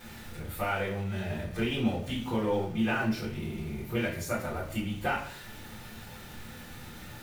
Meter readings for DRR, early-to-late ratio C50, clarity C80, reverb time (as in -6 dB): -8.5 dB, 6.5 dB, 10.0 dB, 0.55 s